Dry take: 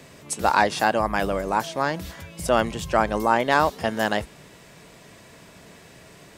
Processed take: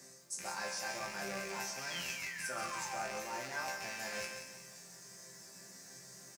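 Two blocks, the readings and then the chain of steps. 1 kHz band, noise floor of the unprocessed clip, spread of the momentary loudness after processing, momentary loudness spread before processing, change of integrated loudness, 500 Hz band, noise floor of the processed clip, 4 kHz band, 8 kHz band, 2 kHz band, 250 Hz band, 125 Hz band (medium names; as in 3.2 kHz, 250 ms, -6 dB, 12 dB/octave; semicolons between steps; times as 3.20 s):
-20.5 dB, -49 dBFS, 12 LU, 12 LU, -17.0 dB, -21.0 dB, -56 dBFS, -10.0 dB, -5.0 dB, -13.5 dB, -23.0 dB, -21.5 dB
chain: rattle on loud lows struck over -38 dBFS, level -10 dBFS; resonant high shelf 4.2 kHz +11 dB, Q 3; reverse; compression, threshold -26 dBFS, peak gain reduction 15 dB; reverse; peaking EQ 1.7 kHz +7 dB 0.57 oct; painted sound fall, 1.90–3.12 s, 590–3400 Hz -33 dBFS; high-pass 77 Hz; chord resonator C3 sus4, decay 0.4 s; on a send: delay 137 ms -10 dB; on the sum: bit-crushed delay 179 ms, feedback 55%, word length 10-bit, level -10.5 dB; trim +3 dB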